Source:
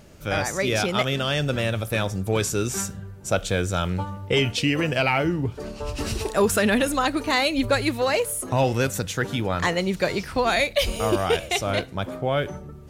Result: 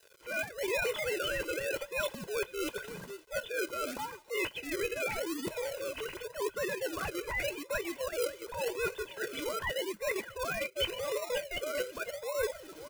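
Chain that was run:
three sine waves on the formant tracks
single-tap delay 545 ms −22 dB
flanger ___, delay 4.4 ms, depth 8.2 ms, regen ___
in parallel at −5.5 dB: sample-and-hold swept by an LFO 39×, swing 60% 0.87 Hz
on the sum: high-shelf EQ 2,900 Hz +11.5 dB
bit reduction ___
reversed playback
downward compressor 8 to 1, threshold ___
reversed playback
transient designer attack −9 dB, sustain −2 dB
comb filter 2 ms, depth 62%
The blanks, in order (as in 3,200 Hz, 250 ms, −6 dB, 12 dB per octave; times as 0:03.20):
0.48 Hz, −48%, 9 bits, −30 dBFS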